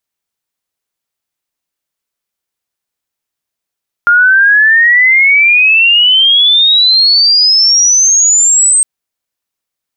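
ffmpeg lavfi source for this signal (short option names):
-f lavfi -i "aevalsrc='pow(10,(-3.5-1.5*t/4.76)/20)*sin(2*PI*1400*4.76/log(8400/1400)*(exp(log(8400/1400)*t/4.76)-1))':d=4.76:s=44100"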